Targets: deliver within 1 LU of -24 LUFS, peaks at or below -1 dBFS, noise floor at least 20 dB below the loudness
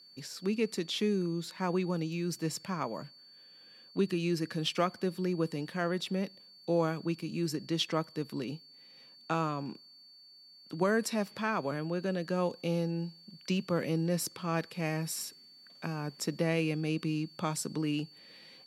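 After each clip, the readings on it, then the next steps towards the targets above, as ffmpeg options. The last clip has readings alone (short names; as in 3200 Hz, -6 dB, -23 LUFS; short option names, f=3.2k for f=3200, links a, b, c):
steady tone 4500 Hz; tone level -54 dBFS; loudness -33.5 LUFS; peak -16.0 dBFS; loudness target -24.0 LUFS
-> -af "bandreject=f=4.5k:w=30"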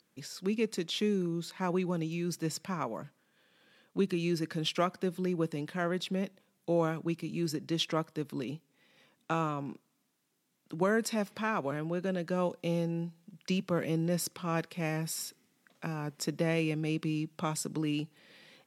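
steady tone none; loudness -33.5 LUFS; peak -16.0 dBFS; loudness target -24.0 LUFS
-> -af "volume=9.5dB"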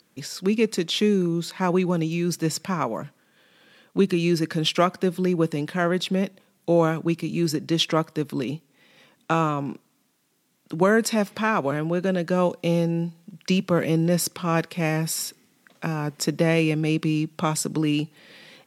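loudness -24.0 LUFS; peak -6.5 dBFS; noise floor -66 dBFS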